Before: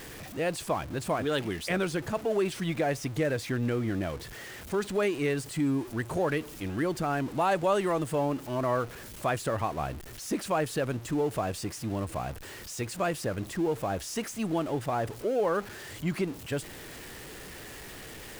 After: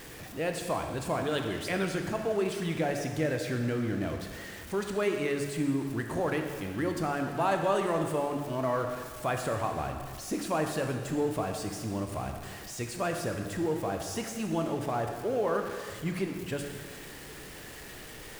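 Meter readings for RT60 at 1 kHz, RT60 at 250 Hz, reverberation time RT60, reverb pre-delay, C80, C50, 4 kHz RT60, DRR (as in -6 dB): 1.7 s, 1.8 s, 1.7 s, 9 ms, 6.5 dB, 5.0 dB, 1.6 s, 3.5 dB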